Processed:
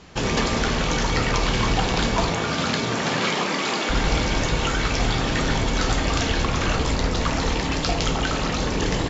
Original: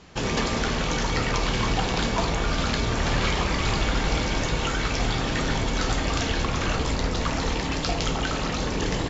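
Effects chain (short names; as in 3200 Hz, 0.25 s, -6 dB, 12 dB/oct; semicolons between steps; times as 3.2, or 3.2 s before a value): 2.28–3.89 HPF 84 Hz -> 240 Hz 24 dB/oct; gain +3 dB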